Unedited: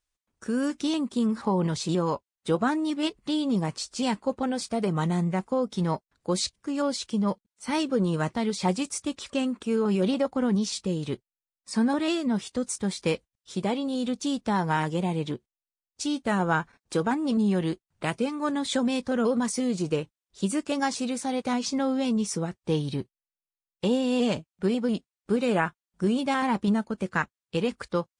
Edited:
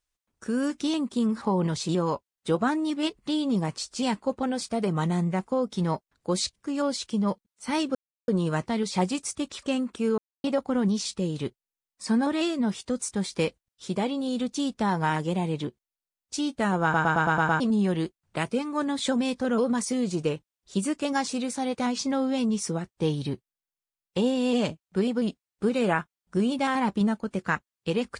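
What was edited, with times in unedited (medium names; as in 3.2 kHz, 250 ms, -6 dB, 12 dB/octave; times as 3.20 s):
7.95 s: insert silence 0.33 s
9.85–10.11 s: mute
16.50 s: stutter in place 0.11 s, 7 plays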